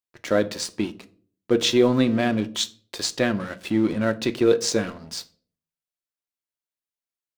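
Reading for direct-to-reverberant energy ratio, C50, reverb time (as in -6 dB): 9.5 dB, 19.5 dB, 0.45 s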